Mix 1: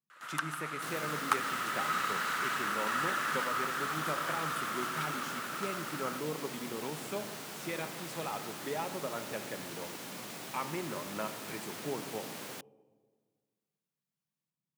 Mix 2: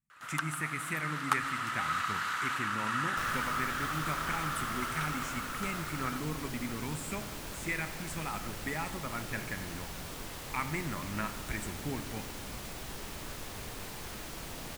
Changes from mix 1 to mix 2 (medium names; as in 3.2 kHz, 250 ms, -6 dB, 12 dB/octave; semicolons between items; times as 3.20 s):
speech: add graphic EQ 125/250/500/2000/4000/8000 Hz +3/+6/-11/+12/-11/+10 dB; second sound: entry +2.35 s; master: remove high-pass 150 Hz 24 dB/octave